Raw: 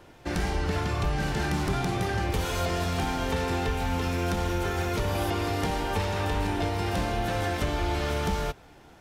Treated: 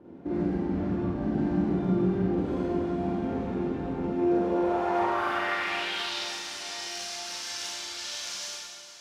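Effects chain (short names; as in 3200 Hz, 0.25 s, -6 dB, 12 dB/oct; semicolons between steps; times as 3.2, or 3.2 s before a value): compressor, threshold -28 dBFS, peak gain reduction 6 dB; hard clip -30 dBFS, distortion -12 dB; band-pass sweep 260 Hz -> 5700 Hz, 4.05–6.28; diffused feedback echo 0.459 s, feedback 55%, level -14.5 dB; Schroeder reverb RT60 1.4 s, combs from 33 ms, DRR -7.5 dB; gain +7.5 dB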